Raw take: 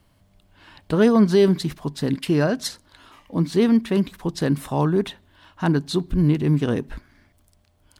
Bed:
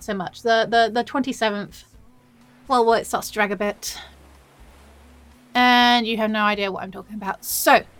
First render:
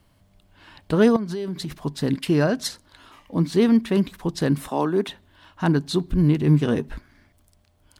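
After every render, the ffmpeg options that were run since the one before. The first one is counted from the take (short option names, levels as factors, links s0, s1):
-filter_complex "[0:a]asettb=1/sr,asplit=3[s0][s1][s2];[s0]atrim=end=1.164[s3];[s1]atrim=start=1.16:end=1.77,asetpts=PTS-STARTPTS,afade=t=in:d=0.004:c=qsin,afade=t=out:st=0.606:d=0.004:c=qsin,acompressor=threshold=0.0501:ratio=6:attack=3.2:release=140:knee=1:detection=peak[s4];[s2]atrim=start=1.766[s5];[s3][s4]acrossfade=d=0.004:c1=hsin:c2=qsin[s6];[s6][s5]acrossfade=d=0.004:c1=qsin:c2=hsin,asettb=1/sr,asplit=3[s7][s8][s9];[s7]atrim=end=4.694[s10];[s8]atrim=start=4.69:end=5.09,asetpts=PTS-STARTPTS,afade=t=in:d=0.004:c=qsin,afade=t=out:st=0.396:d=0.004:c=qsin,highpass=f=210:w=0.5412,highpass=f=210:w=1.3066[s11];[s9]atrim=start=5.086[s12];[s10][s11]acrossfade=d=0.004:c1=hsin:c2=qsin[s13];[s13][s12]acrossfade=d=0.004:c1=qsin:c2=hsin,asettb=1/sr,asplit=3[s14][s15][s16];[s14]atrim=end=6.464[s17];[s15]atrim=start=6.46:end=6.88,asetpts=PTS-STARTPTS,afade=t=in:d=0.004:c=qsin,afade=t=out:st=0.416:d=0.004:c=qsin,asplit=2[s18][s19];[s19]adelay=13,volume=0.376[s20];[s18][s20]amix=inputs=2:normalize=0,atrim=end_sample=18522[s21];[s16]atrim=start=6.876[s22];[s17][s21]acrossfade=d=0.004:c1=hsin:c2=qsin[s23];[s23][s22]acrossfade=d=0.004:c1=qsin:c2=hsin"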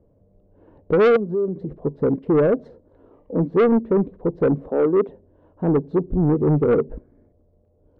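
-af "lowpass=f=480:t=q:w=5.5,asoftclip=type=tanh:threshold=0.251"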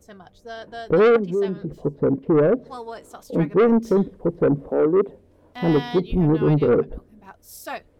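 -filter_complex "[1:a]volume=0.126[s0];[0:a][s0]amix=inputs=2:normalize=0"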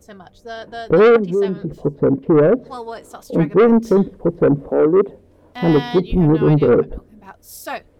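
-af "volume=1.68"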